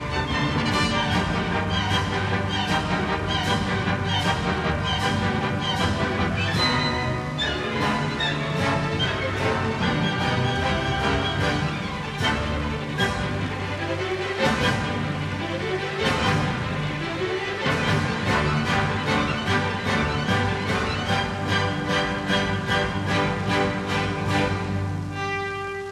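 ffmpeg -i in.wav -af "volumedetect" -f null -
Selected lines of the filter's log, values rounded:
mean_volume: -23.9 dB
max_volume: -7.3 dB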